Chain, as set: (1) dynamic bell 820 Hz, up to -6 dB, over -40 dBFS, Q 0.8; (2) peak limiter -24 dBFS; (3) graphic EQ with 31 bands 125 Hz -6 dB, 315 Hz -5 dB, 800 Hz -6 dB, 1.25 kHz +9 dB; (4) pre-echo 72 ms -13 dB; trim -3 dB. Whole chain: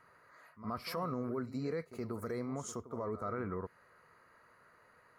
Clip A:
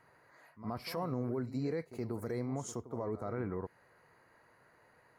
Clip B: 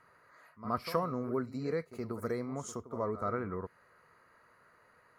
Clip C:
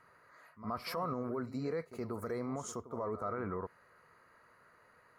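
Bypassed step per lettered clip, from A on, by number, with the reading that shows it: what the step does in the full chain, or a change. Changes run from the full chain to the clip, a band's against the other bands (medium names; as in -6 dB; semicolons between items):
3, 125 Hz band +3.5 dB; 2, crest factor change +6.0 dB; 1, 1 kHz band +2.0 dB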